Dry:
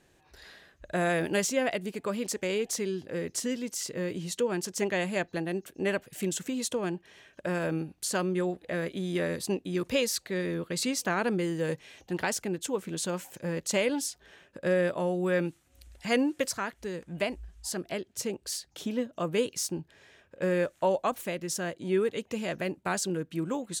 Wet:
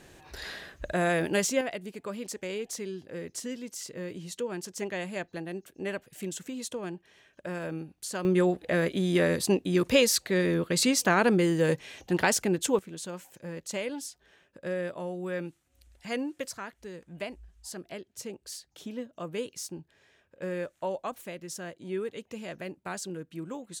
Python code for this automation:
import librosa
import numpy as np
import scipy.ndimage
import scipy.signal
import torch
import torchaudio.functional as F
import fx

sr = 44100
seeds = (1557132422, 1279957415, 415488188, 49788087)

y = fx.gain(x, sr, db=fx.steps((0.0, 11.0), (0.93, 1.0), (1.61, -5.0), (8.25, 5.5), (12.79, -6.5)))